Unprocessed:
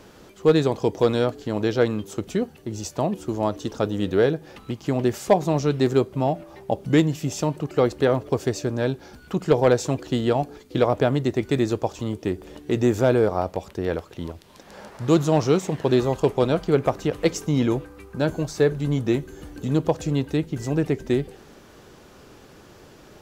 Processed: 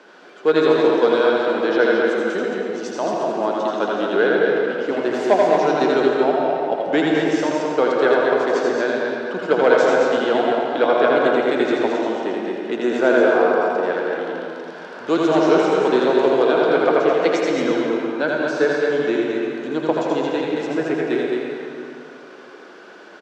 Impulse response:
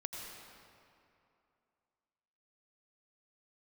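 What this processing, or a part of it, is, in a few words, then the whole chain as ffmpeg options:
station announcement: -filter_complex "[0:a]highpass=340,lowpass=4100,equalizer=frequency=1500:width_type=o:width=0.21:gain=9.5,aecho=1:1:81.63|221.6:0.631|0.562[link_01];[1:a]atrim=start_sample=2205[link_02];[link_01][link_02]afir=irnorm=-1:irlink=0,highpass=frequency=170:width=0.5412,highpass=frequency=170:width=1.3066,volume=5dB"

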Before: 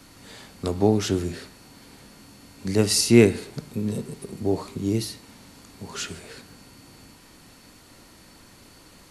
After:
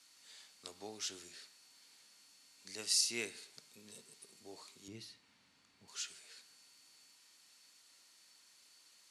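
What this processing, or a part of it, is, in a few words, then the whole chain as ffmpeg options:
piezo pickup straight into a mixer: -filter_complex "[0:a]lowpass=6500,aderivative,asettb=1/sr,asplit=3[link_01][link_02][link_03];[link_01]atrim=end=4.884[link_04];[link_02]atrim=start=4.88:end=5.88,asetpts=PTS-STARTPTS,afade=type=in:duration=0.004:curve=qsin,afade=type=out:start_time=0.996:duration=0.004:curve=qsin,bass=frequency=250:gain=12,treble=frequency=4000:gain=-14[link_05];[link_03]atrim=start=5.876[link_06];[link_04][link_05]acrossfade=duration=0.004:curve1=hsin:curve2=qsin[link_07];[link_07][link_06]acrossfade=duration=0.004:curve1=qsin:curve2=hsin,volume=-4.5dB"

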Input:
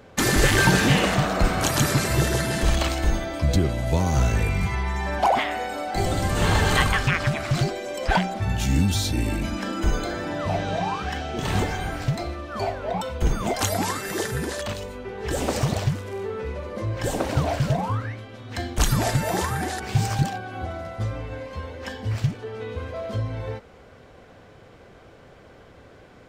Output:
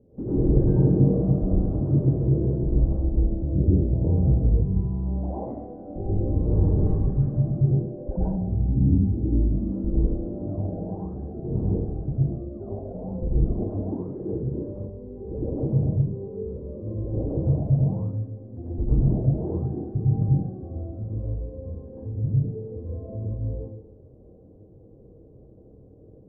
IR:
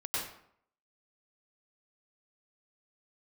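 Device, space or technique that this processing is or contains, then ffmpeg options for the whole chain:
next room: -filter_complex "[0:a]lowpass=frequency=430:width=0.5412,lowpass=frequency=430:width=1.3066[link_01];[1:a]atrim=start_sample=2205[link_02];[link_01][link_02]afir=irnorm=-1:irlink=0,volume=-2dB"

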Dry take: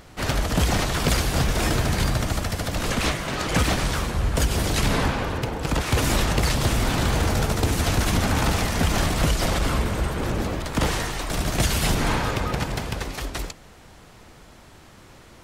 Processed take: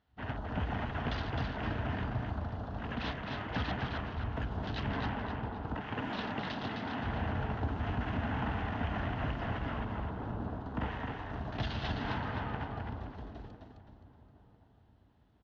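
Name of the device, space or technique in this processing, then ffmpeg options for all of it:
frequency-shifting delay pedal into a guitar cabinet: -filter_complex "[0:a]afwtdn=0.0316,asettb=1/sr,asplit=3[link_01][link_02][link_03];[link_01]atrim=end=5.764[link_04];[link_02]atrim=start=5.76:end=7.03,asetpts=PTS-STARTPTS,afade=type=in:duration=0.004:curve=qsin,afade=type=out:start_time=1.266:duration=0.004:curve=qsin,highpass=frequency=160:width=0.5412,highpass=frequency=160:width=1.3066[link_05];[link_03]atrim=start=7.026[link_06];[link_04][link_05]acrossfade=duration=0.004:curve1=hsin:curve2=qsin[link_07];[link_07][link_06]acrossfade=duration=0.004:curve1=qsin:curve2=hsin,equalizer=frequency=6400:width_type=o:width=0.3:gain=4,asplit=6[link_08][link_09][link_10][link_11][link_12][link_13];[link_09]adelay=261,afreqshift=-45,volume=-4dB[link_14];[link_10]adelay=522,afreqshift=-90,volume=-12.4dB[link_15];[link_11]adelay=783,afreqshift=-135,volume=-20.8dB[link_16];[link_12]adelay=1044,afreqshift=-180,volume=-29.2dB[link_17];[link_13]adelay=1305,afreqshift=-225,volume=-37.6dB[link_18];[link_08][link_14][link_15][link_16][link_17][link_18]amix=inputs=6:normalize=0,highpass=80,equalizer=frequency=160:width_type=q:width=4:gain=-9,equalizer=frequency=360:width_type=q:width=4:gain=-9,equalizer=frequency=530:width_type=q:width=4:gain=-10,equalizer=frequency=1200:width_type=q:width=4:gain=-6,equalizer=frequency=2300:width_type=q:width=4:gain=-10,lowpass=frequency=3600:width=0.5412,lowpass=frequency=3600:width=1.3066,asplit=2[link_19][link_20];[link_20]adelay=1000,lowpass=frequency=880:poles=1,volume=-17dB,asplit=2[link_21][link_22];[link_22]adelay=1000,lowpass=frequency=880:poles=1,volume=0.41,asplit=2[link_23][link_24];[link_24]adelay=1000,lowpass=frequency=880:poles=1,volume=0.41[link_25];[link_19][link_21][link_23][link_25]amix=inputs=4:normalize=0,volume=-9dB"

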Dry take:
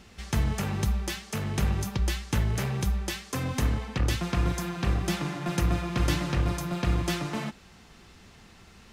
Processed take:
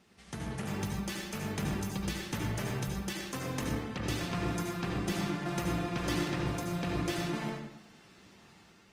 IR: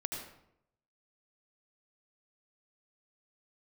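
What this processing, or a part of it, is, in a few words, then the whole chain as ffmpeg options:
far-field microphone of a smart speaker: -filter_complex "[1:a]atrim=start_sample=2205[link_01];[0:a][link_01]afir=irnorm=-1:irlink=0,highpass=140,dynaudnorm=framelen=410:gausssize=3:maxgain=4dB,volume=-9dB" -ar 48000 -c:a libopus -b:a 24k

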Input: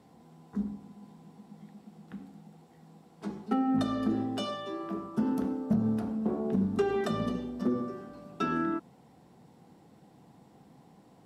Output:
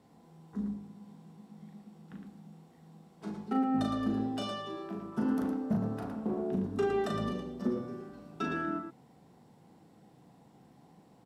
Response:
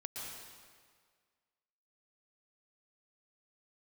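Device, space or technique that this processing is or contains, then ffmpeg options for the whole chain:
slapback doubling: -filter_complex "[0:a]asplit=3[link_01][link_02][link_03];[link_02]adelay=38,volume=-4.5dB[link_04];[link_03]adelay=112,volume=-7dB[link_05];[link_01][link_04][link_05]amix=inputs=3:normalize=0,asettb=1/sr,asplit=3[link_06][link_07][link_08];[link_06]atrim=end=5.124[link_09];[link_07]atrim=start=5.12:end=6.25,asetpts=PTS-STARTPTS,afade=type=in:duration=0.004:curve=qsin,afade=type=out:start_time=1.126:duration=0.004:curve=qsin,equalizer=frequency=1300:width_type=o:width=2:gain=5[link_10];[link_08]atrim=start=6.246[link_11];[link_09][link_10]acrossfade=duration=0.004:curve1=hsin:curve2=qsin[link_12];[link_12][link_11]acrossfade=duration=0.004:curve1=qsin:curve2=hsin,volume=-4dB"

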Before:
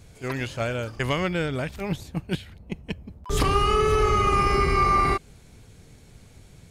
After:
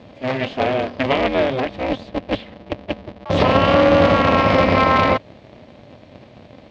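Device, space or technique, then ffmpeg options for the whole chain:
ring modulator pedal into a guitar cabinet: -af "aeval=exprs='val(0)*sgn(sin(2*PI*130*n/s))':channel_layout=same,highpass=85,equalizer=frequency=110:width_type=q:width=4:gain=5,equalizer=frequency=170:width_type=q:width=4:gain=-3,equalizer=frequency=610:width_type=q:width=4:gain=10,equalizer=frequency=1400:width_type=q:width=4:gain=-6,lowpass=frequency=4100:width=0.5412,lowpass=frequency=4100:width=1.3066,volume=6dB"

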